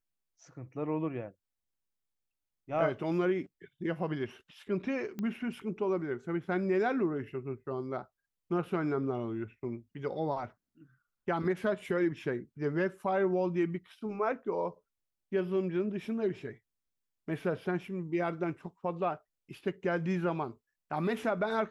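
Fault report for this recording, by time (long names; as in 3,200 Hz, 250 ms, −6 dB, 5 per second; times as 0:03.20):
0:05.19: click −25 dBFS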